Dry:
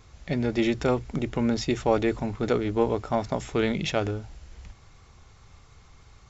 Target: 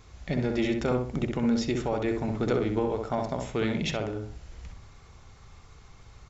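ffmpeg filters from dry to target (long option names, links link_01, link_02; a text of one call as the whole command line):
ffmpeg -i in.wav -filter_complex "[0:a]alimiter=limit=-17dB:level=0:latency=1:release=468,asplit=2[link_01][link_02];[link_02]adelay=64,lowpass=frequency=1600:poles=1,volume=-3dB,asplit=2[link_03][link_04];[link_04]adelay=64,lowpass=frequency=1600:poles=1,volume=0.34,asplit=2[link_05][link_06];[link_06]adelay=64,lowpass=frequency=1600:poles=1,volume=0.34,asplit=2[link_07][link_08];[link_08]adelay=64,lowpass=frequency=1600:poles=1,volume=0.34[link_09];[link_03][link_05][link_07][link_09]amix=inputs=4:normalize=0[link_10];[link_01][link_10]amix=inputs=2:normalize=0" out.wav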